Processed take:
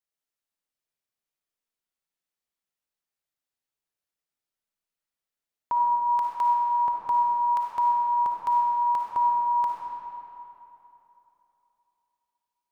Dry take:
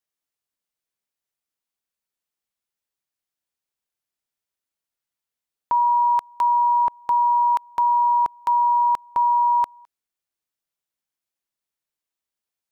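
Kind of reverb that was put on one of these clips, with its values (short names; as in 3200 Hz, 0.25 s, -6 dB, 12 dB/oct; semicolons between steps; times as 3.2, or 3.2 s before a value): digital reverb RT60 3.2 s, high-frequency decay 0.65×, pre-delay 15 ms, DRR -2 dB; gain -6 dB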